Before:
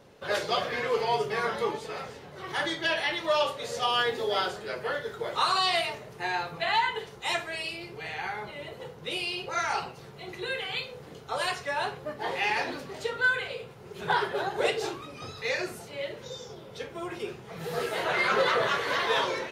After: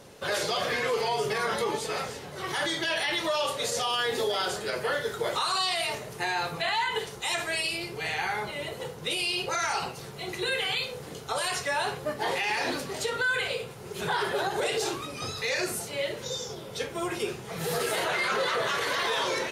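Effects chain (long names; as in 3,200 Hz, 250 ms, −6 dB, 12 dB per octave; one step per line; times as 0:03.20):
parametric band 10,000 Hz +10.5 dB 1.7 octaves
brickwall limiter −24 dBFS, peak gain reduction 11.5 dB
level +4.5 dB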